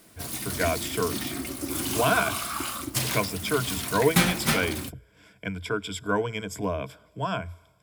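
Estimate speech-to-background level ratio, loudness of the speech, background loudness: −0.5 dB, −29.0 LKFS, −28.5 LKFS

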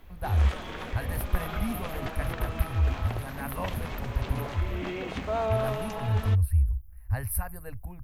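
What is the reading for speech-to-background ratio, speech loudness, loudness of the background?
4.5 dB, −31.0 LKFS, −35.5 LKFS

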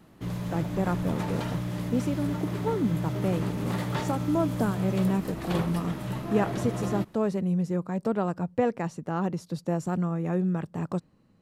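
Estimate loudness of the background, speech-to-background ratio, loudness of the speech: −32.5 LKFS, 2.5 dB, −30.0 LKFS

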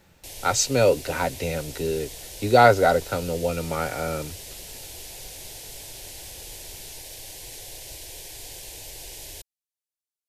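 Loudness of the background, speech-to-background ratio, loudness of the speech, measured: −38.0 LKFS, 15.0 dB, −23.0 LKFS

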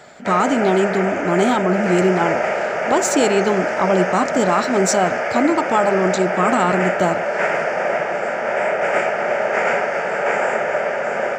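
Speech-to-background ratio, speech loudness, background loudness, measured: 1.5 dB, −19.0 LKFS, −20.5 LKFS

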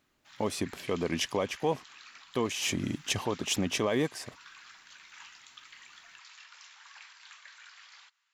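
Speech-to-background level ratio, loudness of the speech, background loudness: 19.0 dB, −31.5 LKFS, −50.5 LKFS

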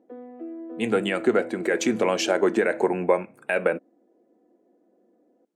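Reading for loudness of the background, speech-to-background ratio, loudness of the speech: −38.5 LKFS, 14.5 dB, −24.0 LKFS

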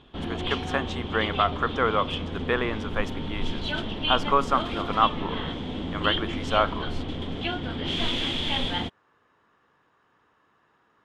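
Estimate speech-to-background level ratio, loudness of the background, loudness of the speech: 2.5 dB, −30.0 LKFS, −27.5 LKFS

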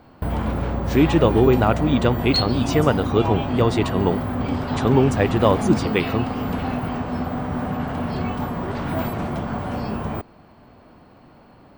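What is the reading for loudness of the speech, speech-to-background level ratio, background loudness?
−20.5 LKFS, 4.5 dB, −25.0 LKFS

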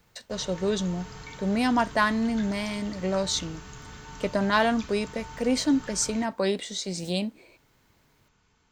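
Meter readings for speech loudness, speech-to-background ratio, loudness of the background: −27.0 LKFS, 16.0 dB, −43.0 LKFS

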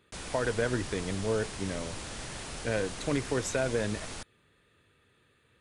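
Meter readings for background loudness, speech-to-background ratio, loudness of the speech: −40.0 LKFS, 7.0 dB, −33.0 LKFS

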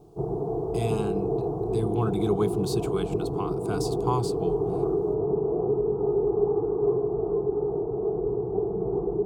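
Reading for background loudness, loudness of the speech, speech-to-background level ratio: −27.5 LKFS, −31.0 LKFS, −3.5 dB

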